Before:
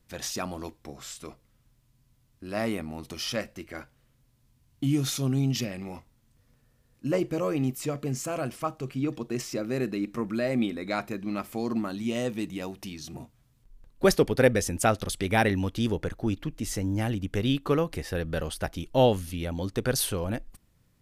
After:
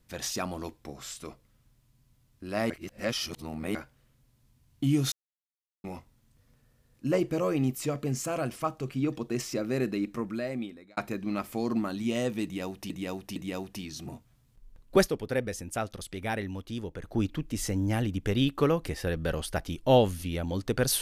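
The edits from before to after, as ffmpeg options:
ffmpeg -i in.wav -filter_complex "[0:a]asplit=10[link_01][link_02][link_03][link_04][link_05][link_06][link_07][link_08][link_09][link_10];[link_01]atrim=end=2.702[link_11];[link_02]atrim=start=2.698:end=3.752,asetpts=PTS-STARTPTS,areverse[link_12];[link_03]atrim=start=3.748:end=5.12,asetpts=PTS-STARTPTS,afade=type=out:start_time=1.368:duration=0.004:curve=hsin[link_13];[link_04]atrim=start=5.12:end=5.84,asetpts=PTS-STARTPTS,volume=0[link_14];[link_05]atrim=start=5.84:end=10.97,asetpts=PTS-STARTPTS,afade=type=in:duration=0.004:curve=hsin,afade=type=out:start_time=4.13:duration=1[link_15];[link_06]atrim=start=10.97:end=12.902,asetpts=PTS-STARTPTS,afade=type=in:duration=0.004:curve=hsin[link_16];[link_07]atrim=start=12.438:end=12.902[link_17];[link_08]atrim=start=12.438:end=14.18,asetpts=PTS-STARTPTS,afade=type=out:start_time=1.612:duration=0.13:silence=0.354813[link_18];[link_09]atrim=start=14.18:end=16.08,asetpts=PTS-STARTPTS,volume=-9dB[link_19];[link_10]atrim=start=16.08,asetpts=PTS-STARTPTS,afade=type=in:duration=0.13:silence=0.354813[link_20];[link_11][link_12]acrossfade=duration=0.004:curve1=hsin:curve2=hsin[link_21];[link_13][link_14][link_15][link_16]concat=n=4:v=0:a=1[link_22];[link_21][link_22]acrossfade=duration=0.004:curve1=hsin:curve2=hsin[link_23];[link_23][link_17]acrossfade=duration=0.004:curve1=hsin:curve2=hsin[link_24];[link_18][link_19][link_20]concat=n=3:v=0:a=1[link_25];[link_24][link_25]acrossfade=duration=0.004:curve1=hsin:curve2=hsin" out.wav

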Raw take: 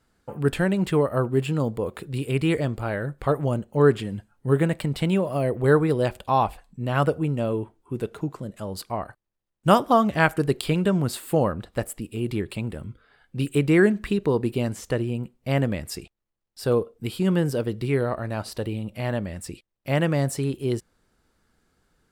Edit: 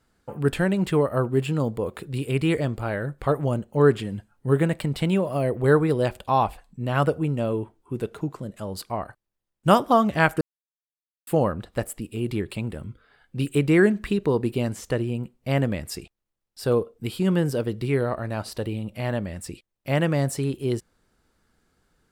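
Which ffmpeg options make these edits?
ffmpeg -i in.wav -filter_complex "[0:a]asplit=3[link_01][link_02][link_03];[link_01]atrim=end=10.41,asetpts=PTS-STARTPTS,afade=type=out:start_time=10.406:duration=0.004:curve=hsin[link_04];[link_02]atrim=start=10.41:end=11.27,asetpts=PTS-STARTPTS,volume=0[link_05];[link_03]atrim=start=11.27,asetpts=PTS-STARTPTS,afade=type=in:duration=0.004:curve=hsin[link_06];[link_04][link_05][link_06]concat=n=3:v=0:a=1" out.wav

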